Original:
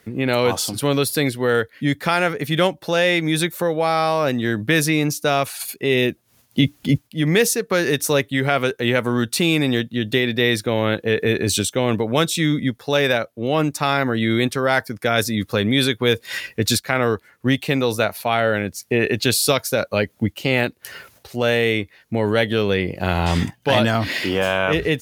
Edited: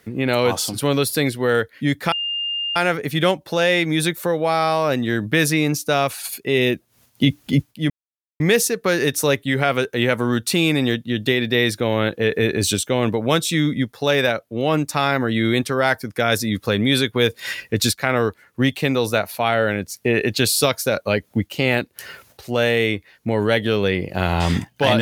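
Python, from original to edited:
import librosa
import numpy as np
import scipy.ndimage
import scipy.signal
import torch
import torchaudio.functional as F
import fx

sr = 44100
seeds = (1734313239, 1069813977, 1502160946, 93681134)

y = fx.edit(x, sr, fx.insert_tone(at_s=2.12, length_s=0.64, hz=2810.0, db=-21.5),
    fx.insert_silence(at_s=7.26, length_s=0.5), tone=tone)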